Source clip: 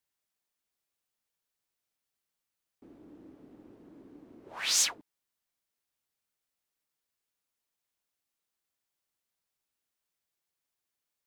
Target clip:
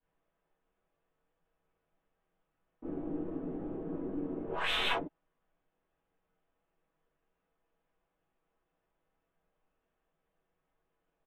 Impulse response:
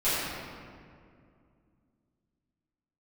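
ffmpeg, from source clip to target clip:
-filter_complex "[0:a]aecho=1:1:6.2:0.36,adynamicsmooth=sensitivity=6.5:basefreq=1200,aresample=8000,asoftclip=type=hard:threshold=-37dB,aresample=44100,aeval=exprs='0.0299*(cos(1*acos(clip(val(0)/0.0299,-1,1)))-cos(1*PI/2))+0.0119*(cos(2*acos(clip(val(0)/0.0299,-1,1)))-cos(2*PI/2))+0.00531*(cos(4*acos(clip(val(0)/0.0299,-1,1)))-cos(4*PI/2))':channel_layout=same,areverse,acompressor=threshold=-46dB:ratio=10,areverse[link_01];[1:a]atrim=start_sample=2205,atrim=end_sample=3969,asetrate=52920,aresample=44100[link_02];[link_01][link_02]afir=irnorm=-1:irlink=0,volume=8.5dB"

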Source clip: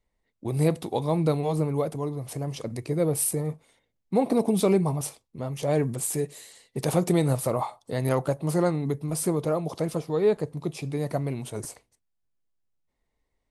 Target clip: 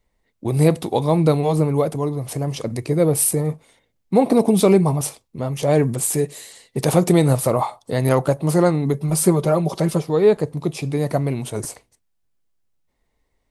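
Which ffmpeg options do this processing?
ffmpeg -i in.wav -filter_complex "[0:a]asettb=1/sr,asplit=3[link_01][link_02][link_03];[link_01]atrim=end=8.934[link_04];[link_02]atrim=start=8.93:end=10.03,asetpts=PTS-STARTPTS,afade=type=in:duration=0.004:curve=qsin,afade=type=out:start_time=1.096:duration=0.004:curve=qsin,aecho=1:1:5.2:0.63,atrim=end_sample=48510[link_05];[link_03]atrim=start=10.026[link_06];[link_04][link_05]acrossfade=duration=0.004:curve1=hsin:curve2=qsin[link_07];[link_07][link_06]acrossfade=duration=0.004:curve1=qsin:curve2=hsin,volume=7.5dB" out.wav

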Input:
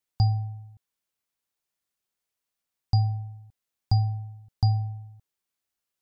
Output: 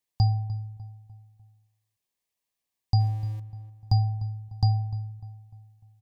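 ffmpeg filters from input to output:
ffmpeg -i in.wav -filter_complex "[0:a]asettb=1/sr,asplit=3[link_01][link_02][link_03];[link_01]atrim=end=3.004[link_04];[link_02]atrim=start=3:end=3.4,asetpts=PTS-STARTPTS,afade=type=in:duration=0.004:curve=qsin,afade=type=out:start_time=0.396:duration=0.004:curve=qsin,aeval=exprs='val(0)+0.5*0.00794*sgn(val(0))':channel_layout=same[link_05];[link_03]atrim=start=3.396[link_06];[link_04][link_05]acrossfade=duration=0.004:curve1=hsin:curve2=qsin[link_07];[link_07][link_06]acrossfade=duration=0.004:curve1=qsin:curve2=hsin,asuperstop=centerf=1400:order=4:qfactor=4.3,asplit=2[link_08][link_09];[link_09]adelay=299,lowpass=frequency=2100:poles=1,volume=-14.5dB,asplit=2[link_10][link_11];[link_11]adelay=299,lowpass=frequency=2100:poles=1,volume=0.44,asplit=2[link_12][link_13];[link_13]adelay=299,lowpass=frequency=2100:poles=1,volume=0.44,asplit=2[link_14][link_15];[link_15]adelay=299,lowpass=frequency=2100:poles=1,volume=0.44[link_16];[link_08][link_10][link_12][link_14][link_16]amix=inputs=5:normalize=0" out.wav

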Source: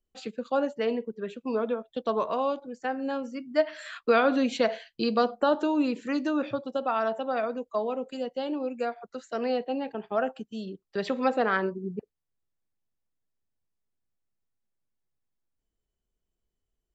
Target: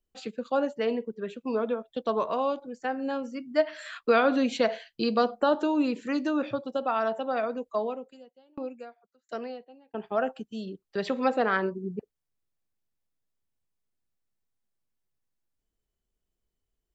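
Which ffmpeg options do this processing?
ffmpeg -i in.wav -filter_complex "[0:a]asettb=1/sr,asplit=3[link_01][link_02][link_03];[link_01]atrim=end=7.864[link_04];[link_02]atrim=start=7.86:end=9.94,asetpts=PTS-STARTPTS,afade=type=in:duration=0.004:curve=qsin,afade=type=out:start_time=2.076:duration=0.004:curve=qsin,aeval=exprs='val(0)*pow(10,-35*if(lt(mod(1.4*n/s,1),2*abs(1.4)/1000),1-mod(1.4*n/s,1)/(2*abs(1.4)/1000),(mod(1.4*n/s,1)-2*abs(1.4)/1000)/(1-2*abs(1.4)/1000))/20)':channel_layout=same[link_05];[link_03]atrim=start=9.936[link_06];[link_04][link_05]acrossfade=duration=0.004:curve1=hsin:curve2=qsin[link_07];[link_07][link_06]acrossfade=duration=0.004:curve1=qsin:curve2=hsin" out.wav

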